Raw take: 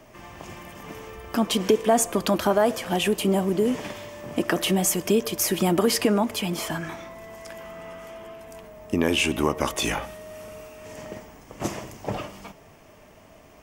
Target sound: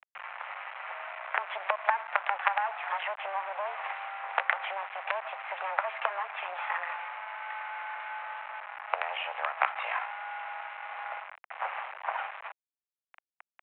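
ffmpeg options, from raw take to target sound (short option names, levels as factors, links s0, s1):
-af "acompressor=threshold=0.0501:ratio=5,aresample=8000,acrusher=bits=4:dc=4:mix=0:aa=0.000001,aresample=44100,highpass=f=520:t=q:w=0.5412,highpass=f=520:t=q:w=1.307,lowpass=f=2300:t=q:w=0.5176,lowpass=f=2300:t=q:w=0.7071,lowpass=f=2300:t=q:w=1.932,afreqshift=200,volume=2.11"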